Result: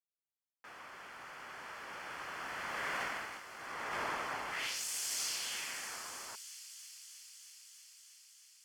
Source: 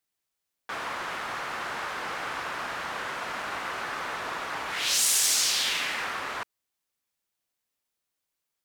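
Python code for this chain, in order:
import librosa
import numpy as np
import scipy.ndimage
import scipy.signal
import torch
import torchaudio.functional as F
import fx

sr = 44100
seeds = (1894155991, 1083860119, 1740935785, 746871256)

p1 = fx.doppler_pass(x, sr, speed_mps=25, closest_m=2.6, pass_at_s=3.48)
p2 = fx.dynamic_eq(p1, sr, hz=2000.0, q=5.1, threshold_db=-59.0, ratio=4.0, max_db=4)
p3 = fx.over_compress(p2, sr, threshold_db=-48.0, ratio=-1.0)
p4 = fx.notch(p3, sr, hz=3800.0, q=5.4)
p5 = p4 + fx.echo_wet_highpass(p4, sr, ms=318, feedback_pct=81, hz=4400.0, wet_db=-8, dry=0)
y = p5 * 10.0 ** (7.5 / 20.0)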